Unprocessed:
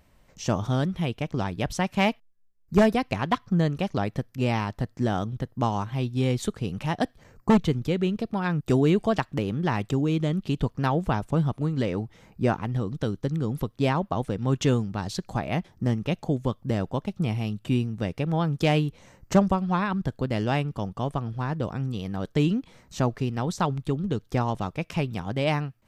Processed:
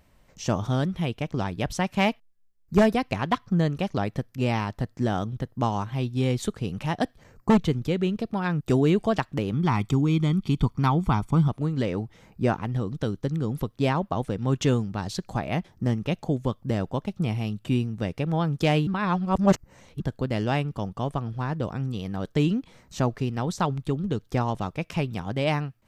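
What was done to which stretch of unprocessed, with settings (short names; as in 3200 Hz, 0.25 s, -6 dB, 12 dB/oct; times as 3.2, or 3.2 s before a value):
9.53–11.48 comb 0.9 ms
18.87–20 reverse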